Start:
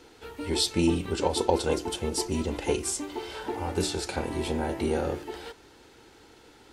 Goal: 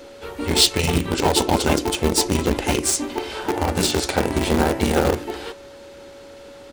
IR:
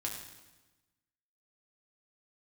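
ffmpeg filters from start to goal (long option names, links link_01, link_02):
-filter_complex "[0:a]afftfilt=real='re*lt(hypot(re,im),0.355)':imag='im*lt(hypot(re,im),0.355)':win_size=1024:overlap=0.75,asplit=3[link_01][link_02][link_03];[link_02]asetrate=35002,aresample=44100,atempo=1.25992,volume=-9dB[link_04];[link_03]asetrate=37084,aresample=44100,atempo=1.18921,volume=-10dB[link_05];[link_01][link_04][link_05]amix=inputs=3:normalize=0,asplit=2[link_06][link_07];[link_07]acrusher=bits=3:mix=0:aa=0.000001,volume=-7dB[link_08];[link_06][link_08]amix=inputs=2:normalize=0,aeval=exprs='val(0)+0.00398*sin(2*PI*560*n/s)':channel_layout=same,volume=7.5dB"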